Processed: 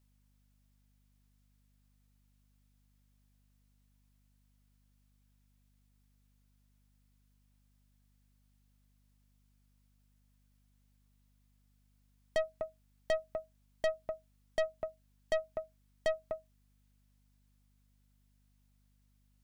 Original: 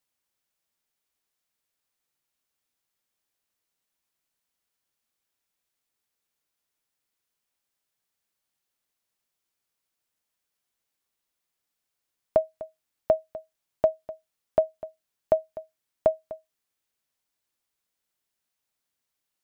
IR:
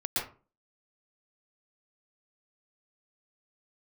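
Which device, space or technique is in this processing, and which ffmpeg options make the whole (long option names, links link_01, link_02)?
valve amplifier with mains hum: -af "aeval=exprs='(tanh(28.2*val(0)+0.4)-tanh(0.4))/28.2':channel_layout=same,aeval=exprs='val(0)+0.000282*(sin(2*PI*50*n/s)+sin(2*PI*2*50*n/s)/2+sin(2*PI*3*50*n/s)/3+sin(2*PI*4*50*n/s)/4+sin(2*PI*5*50*n/s)/5)':channel_layout=same,volume=2dB"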